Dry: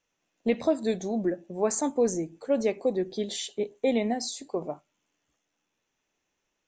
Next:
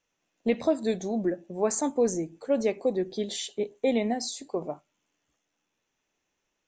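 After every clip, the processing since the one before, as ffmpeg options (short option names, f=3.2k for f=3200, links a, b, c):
-af anull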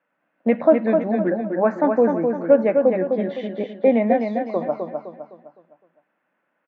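-filter_complex "[0:a]highpass=f=170:w=0.5412,highpass=f=170:w=1.3066,equalizer=f=400:t=q:w=4:g=-10,equalizer=f=580:t=q:w=4:g=5,equalizer=f=1.5k:t=q:w=4:g=6,lowpass=f=2k:w=0.5412,lowpass=f=2k:w=1.3066,asplit=2[a][b];[b]aecho=0:1:256|512|768|1024|1280:0.562|0.225|0.09|0.036|0.0144[c];[a][c]amix=inputs=2:normalize=0,volume=8.5dB"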